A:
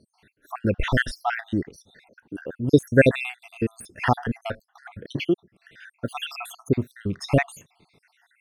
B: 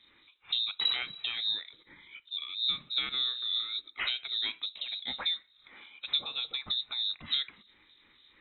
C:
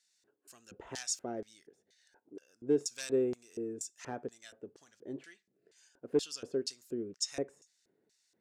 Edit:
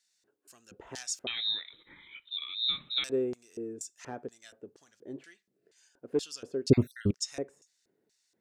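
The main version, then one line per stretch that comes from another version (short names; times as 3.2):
C
1.27–3.04 from B
6.7–7.11 from A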